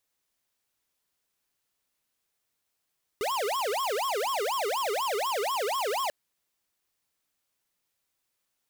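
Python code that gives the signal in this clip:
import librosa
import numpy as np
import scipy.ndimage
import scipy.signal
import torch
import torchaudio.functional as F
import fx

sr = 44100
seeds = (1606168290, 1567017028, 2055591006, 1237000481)

y = fx.siren(sr, length_s=2.89, kind='wail', low_hz=398.0, high_hz=1100.0, per_s=4.1, wave='square', level_db=-29.0)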